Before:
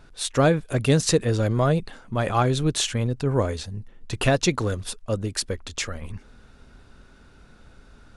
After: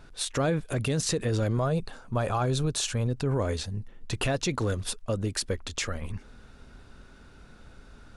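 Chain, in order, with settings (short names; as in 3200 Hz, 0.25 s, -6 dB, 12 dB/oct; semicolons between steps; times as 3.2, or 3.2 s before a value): 1.57–3.07 thirty-one-band EQ 200 Hz -5 dB, 315 Hz -6 dB, 2000 Hz -8 dB, 3150 Hz -5 dB; limiter -18.5 dBFS, peak gain reduction 11 dB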